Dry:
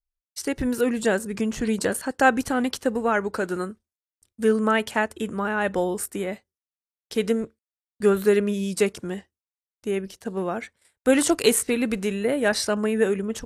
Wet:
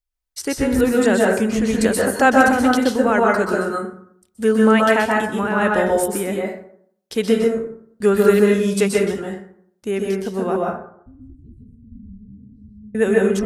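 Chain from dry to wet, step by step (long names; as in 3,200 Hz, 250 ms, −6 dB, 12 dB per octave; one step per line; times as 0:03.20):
0:10.56–0:12.95: inverse Chebyshev low-pass filter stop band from 550 Hz, stop band 70 dB
dense smooth reverb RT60 0.63 s, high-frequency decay 0.5×, pre-delay 115 ms, DRR −2 dB
level +3 dB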